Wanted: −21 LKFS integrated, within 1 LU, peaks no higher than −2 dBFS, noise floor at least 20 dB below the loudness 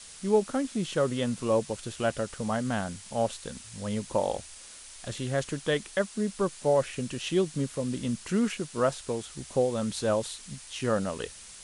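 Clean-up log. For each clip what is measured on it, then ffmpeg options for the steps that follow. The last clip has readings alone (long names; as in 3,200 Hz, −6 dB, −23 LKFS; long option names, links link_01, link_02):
background noise floor −47 dBFS; target noise floor −50 dBFS; integrated loudness −30.0 LKFS; sample peak −11.5 dBFS; target loudness −21.0 LKFS
→ -af "afftdn=noise_reduction=6:noise_floor=-47"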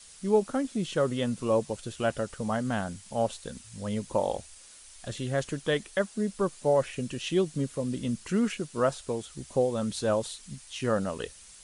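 background noise floor −51 dBFS; integrated loudness −30.0 LKFS; sample peak −12.0 dBFS; target loudness −21.0 LKFS
→ -af "volume=9dB"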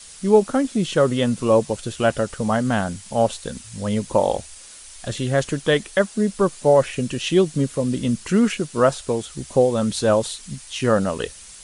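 integrated loudness −21.0 LKFS; sample peak −3.0 dBFS; background noise floor −42 dBFS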